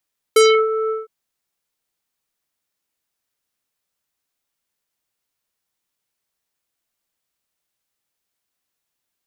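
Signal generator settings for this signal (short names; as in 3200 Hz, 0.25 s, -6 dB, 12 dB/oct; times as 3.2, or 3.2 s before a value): synth note square A4 24 dB/oct, low-pass 1200 Hz, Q 1.9, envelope 3.5 oct, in 0.26 s, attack 5.7 ms, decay 0.31 s, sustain -12 dB, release 0.17 s, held 0.54 s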